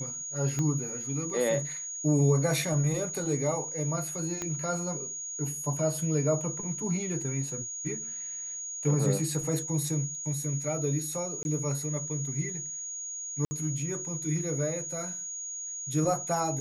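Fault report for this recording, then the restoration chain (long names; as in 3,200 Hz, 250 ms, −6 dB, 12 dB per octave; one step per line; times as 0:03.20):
whistle 6,700 Hz −35 dBFS
0:00.59: click −19 dBFS
0:04.42: click −19 dBFS
0:11.43–0:11.45: drop-out 21 ms
0:13.45–0:13.51: drop-out 60 ms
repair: click removal
notch filter 6,700 Hz, Q 30
repair the gap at 0:11.43, 21 ms
repair the gap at 0:13.45, 60 ms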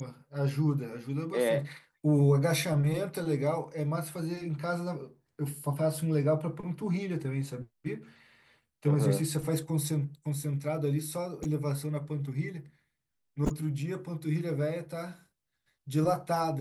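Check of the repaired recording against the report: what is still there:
0:00.59: click
0:04.42: click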